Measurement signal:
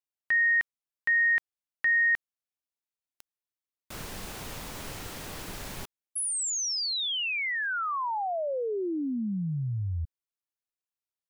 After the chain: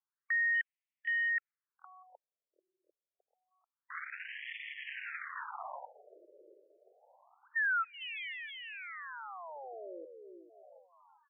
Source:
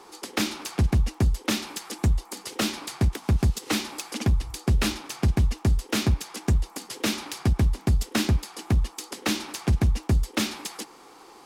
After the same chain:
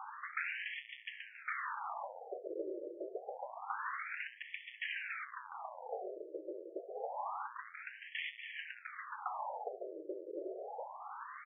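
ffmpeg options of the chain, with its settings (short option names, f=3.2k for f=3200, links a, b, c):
-filter_complex "[0:a]acrossover=split=2500[a][b];[b]acompressor=threshold=-45dB:ratio=4:attack=1:release=60[c];[a][c]amix=inputs=2:normalize=0,highshelf=f=3.1k:t=q:w=1.5:g=-8.5,aresample=16000,volume=30.5dB,asoftclip=hard,volume=-30.5dB,aresample=44100,aeval=exprs='0.0447*(cos(1*acos(clip(val(0)/0.0447,-1,1)))-cos(1*PI/2))+0.00708*(cos(4*acos(clip(val(0)/0.0447,-1,1)))-cos(4*PI/2))+0.00282*(cos(5*acos(clip(val(0)/0.0447,-1,1)))-cos(5*PI/2))+0.00631*(cos(8*acos(clip(val(0)/0.0447,-1,1)))-cos(8*PI/2))':c=same,asplit=2[d][e];[e]aecho=0:1:745|1490|2235|2980:0.168|0.0755|0.034|0.0153[f];[d][f]amix=inputs=2:normalize=0,afftfilt=real='re*between(b*sr/1024,430*pow(2500/430,0.5+0.5*sin(2*PI*0.27*pts/sr))/1.41,430*pow(2500/430,0.5+0.5*sin(2*PI*0.27*pts/sr))*1.41)':imag='im*between(b*sr/1024,430*pow(2500/430,0.5+0.5*sin(2*PI*0.27*pts/sr))/1.41,430*pow(2500/430,0.5+0.5*sin(2*PI*0.27*pts/sr))*1.41)':win_size=1024:overlap=0.75,volume=2dB"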